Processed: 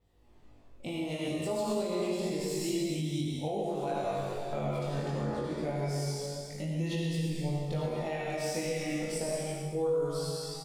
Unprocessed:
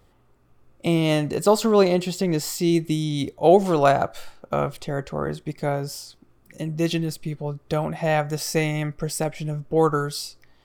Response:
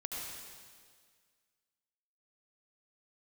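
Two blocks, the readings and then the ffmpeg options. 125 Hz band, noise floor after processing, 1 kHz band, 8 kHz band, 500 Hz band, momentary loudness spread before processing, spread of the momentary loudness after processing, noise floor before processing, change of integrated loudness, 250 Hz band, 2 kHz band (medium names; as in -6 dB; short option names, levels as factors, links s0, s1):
-7.5 dB, -56 dBFS, -13.0 dB, -8.0 dB, -10.5 dB, 13 LU, 4 LU, -59 dBFS, -10.5 dB, -10.0 dB, -11.0 dB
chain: -filter_complex "[0:a]asplit=2[s0][s1];[s1]aecho=0:1:19|56:0.596|0.473[s2];[s0][s2]amix=inputs=2:normalize=0[s3];[1:a]atrim=start_sample=2205[s4];[s3][s4]afir=irnorm=-1:irlink=0,acrossover=split=7600[s5][s6];[s5]dynaudnorm=f=220:g=3:m=3.76[s7];[s7][s6]amix=inputs=2:normalize=0,alimiter=limit=0.501:level=0:latency=1:release=123,equalizer=f=1300:w=2.7:g=-9,acompressor=threshold=0.0251:ratio=1.5,adynamicequalizer=threshold=0.00224:dfrequency=9900:dqfactor=1.8:tfrequency=9900:tqfactor=1.8:attack=5:release=100:ratio=0.375:range=3.5:mode=boostabove:tftype=bell,flanger=delay=20:depth=2.5:speed=0.28,volume=0.447"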